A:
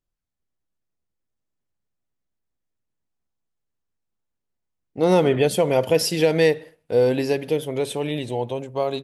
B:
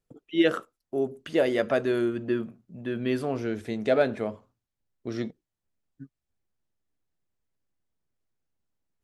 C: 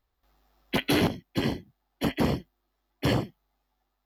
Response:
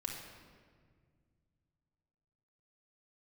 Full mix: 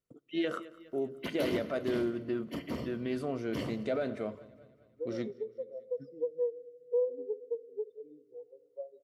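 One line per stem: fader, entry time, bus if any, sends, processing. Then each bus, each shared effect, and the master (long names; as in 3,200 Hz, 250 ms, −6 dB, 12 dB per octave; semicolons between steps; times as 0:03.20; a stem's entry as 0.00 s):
−5.0 dB, 0.00 s, bus A, send −11 dB, no echo send, low-shelf EQ 310 Hz −6.5 dB; downward compressor 16 to 1, threshold −23 dBFS, peak gain reduction 10 dB; every bin expanded away from the loudest bin 4 to 1
−5.5 dB, 0.00 s, bus A, send −23 dB, echo send −22.5 dB, no processing
−14.5 dB, 0.50 s, no bus, send −5 dB, echo send −17.5 dB, no processing
bus A: 0.0 dB, brickwall limiter −24 dBFS, peak gain reduction 9 dB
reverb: on, RT60 1.9 s, pre-delay 3 ms
echo: repeating echo 203 ms, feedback 53%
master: notch comb filter 830 Hz; highs frequency-modulated by the lows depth 0.1 ms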